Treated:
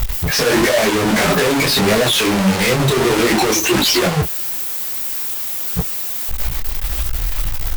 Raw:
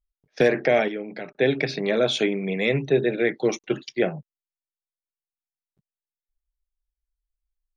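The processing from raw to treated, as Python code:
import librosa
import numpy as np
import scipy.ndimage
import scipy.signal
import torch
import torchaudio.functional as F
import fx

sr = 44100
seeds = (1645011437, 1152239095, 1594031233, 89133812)

y = fx.bin_expand(x, sr, power=1.5)
y = fx.power_curve(y, sr, exponent=0.35)
y = fx.fuzz(y, sr, gain_db=50.0, gate_db=-45.0)
y = fx.detune_double(y, sr, cents=54)
y = F.gain(torch.from_numpy(y), 2.5).numpy()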